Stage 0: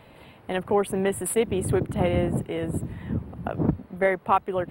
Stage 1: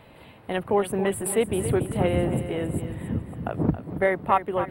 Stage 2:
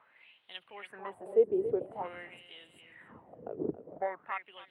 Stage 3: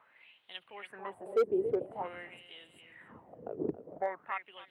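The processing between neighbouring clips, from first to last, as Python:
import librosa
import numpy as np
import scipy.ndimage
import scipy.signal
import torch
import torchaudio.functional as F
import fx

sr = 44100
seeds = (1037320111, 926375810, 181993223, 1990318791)

y1 = fx.echo_feedback(x, sr, ms=275, feedback_pct=44, wet_db=-11.0)
y2 = fx.wah_lfo(y1, sr, hz=0.48, low_hz=400.0, high_hz=3400.0, q=5.4)
y3 = np.clip(y2, -10.0 ** (-22.0 / 20.0), 10.0 ** (-22.0 / 20.0))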